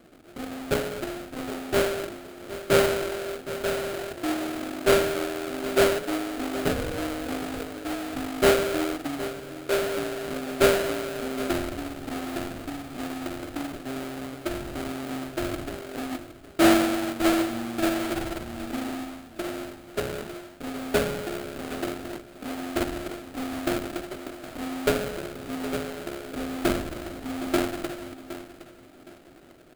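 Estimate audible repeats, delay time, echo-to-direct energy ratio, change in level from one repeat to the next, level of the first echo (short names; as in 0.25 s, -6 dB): 2, 0.765 s, -13.5 dB, -11.0 dB, -14.0 dB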